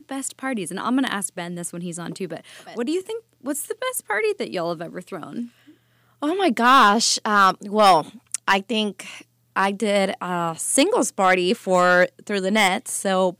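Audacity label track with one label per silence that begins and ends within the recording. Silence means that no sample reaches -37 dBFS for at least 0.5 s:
5.470000	6.220000	silence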